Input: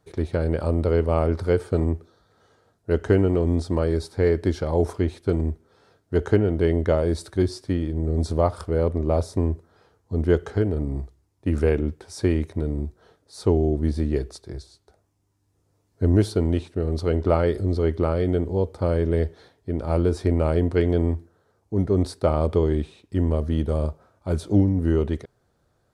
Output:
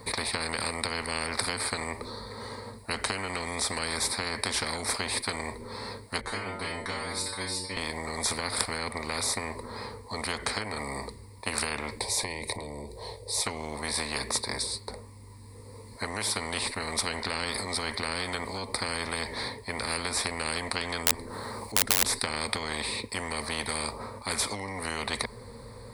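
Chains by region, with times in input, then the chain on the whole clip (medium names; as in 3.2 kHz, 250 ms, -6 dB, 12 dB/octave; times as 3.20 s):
6.21–7.77 s: inharmonic resonator 92 Hz, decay 0.51 s, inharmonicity 0.002 + flutter echo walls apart 5.2 m, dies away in 0.29 s
11.99–13.46 s: compression 3:1, threshold -33 dBFS + static phaser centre 580 Hz, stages 4
21.06–22.22 s: integer overflow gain 13.5 dB + upward compressor, threshold -42 dBFS
whole clip: rippled EQ curve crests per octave 0.94, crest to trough 16 dB; compression, threshold -19 dBFS; spectrum-flattening compressor 10:1; trim +7 dB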